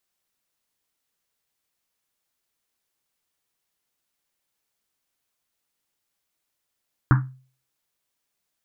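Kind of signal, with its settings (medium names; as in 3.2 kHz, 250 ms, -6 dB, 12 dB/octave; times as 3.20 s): Risset drum, pitch 130 Hz, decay 0.42 s, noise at 1.3 kHz, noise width 750 Hz, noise 20%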